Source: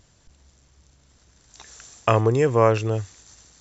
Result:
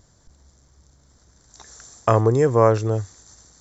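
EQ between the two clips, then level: peaking EQ 2.7 kHz -14.5 dB 0.62 oct; +2.0 dB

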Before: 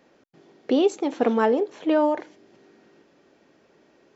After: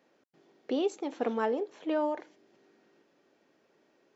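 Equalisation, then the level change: bass shelf 120 Hz -11.5 dB; -8.5 dB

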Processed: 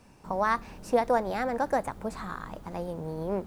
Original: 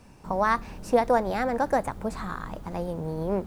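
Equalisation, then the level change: bass shelf 150 Hz -4.5 dB; -2.5 dB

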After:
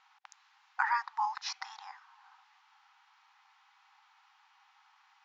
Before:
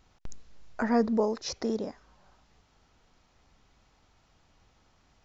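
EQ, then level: brick-wall FIR high-pass 760 Hz; Bessel low-pass 2.7 kHz, order 2; +6.5 dB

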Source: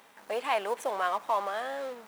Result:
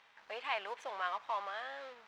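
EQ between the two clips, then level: distance through air 210 m; amplifier tone stack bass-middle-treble 5-5-5; peaking EQ 220 Hz -9.5 dB 0.87 oct; +8.0 dB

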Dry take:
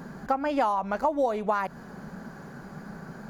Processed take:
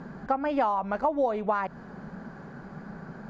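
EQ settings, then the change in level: distance through air 96 m; treble shelf 4.8 kHz -6 dB; 0.0 dB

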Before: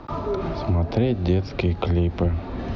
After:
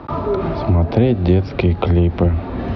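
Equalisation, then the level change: high-pass 48 Hz; distance through air 170 m; +7.0 dB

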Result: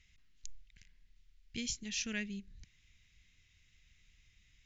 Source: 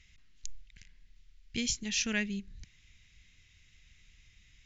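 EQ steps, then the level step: dynamic bell 890 Hz, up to -6 dB, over -56 dBFS, Q 1.3; -6.0 dB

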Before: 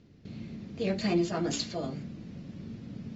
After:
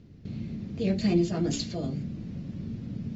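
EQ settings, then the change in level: bass shelf 240 Hz +9.5 dB; dynamic bell 1.1 kHz, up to -7 dB, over -47 dBFS, Q 0.86; 0.0 dB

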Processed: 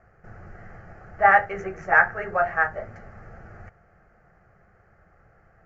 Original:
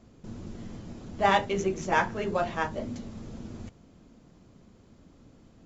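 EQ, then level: distance through air 170 m; high-order bell 1.2 kHz +14 dB; static phaser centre 980 Hz, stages 6; 0.0 dB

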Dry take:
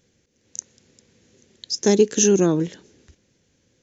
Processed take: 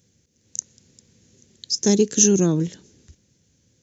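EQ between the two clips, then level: high-pass 56 Hz; tone controls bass +10 dB, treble +10 dB; -5.0 dB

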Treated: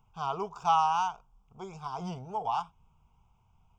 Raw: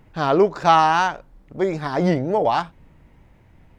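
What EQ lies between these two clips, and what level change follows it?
tone controls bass -8 dB, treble -3 dB; static phaser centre 740 Hz, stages 4; static phaser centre 2.8 kHz, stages 8; -5.0 dB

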